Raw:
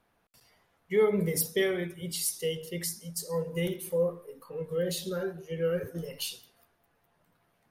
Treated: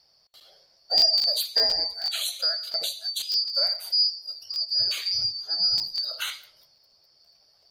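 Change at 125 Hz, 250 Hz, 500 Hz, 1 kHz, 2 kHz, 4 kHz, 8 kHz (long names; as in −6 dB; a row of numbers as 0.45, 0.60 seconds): below −15 dB, below −20 dB, −12.0 dB, +2.5 dB, −0.5 dB, +19.5 dB, −1.5 dB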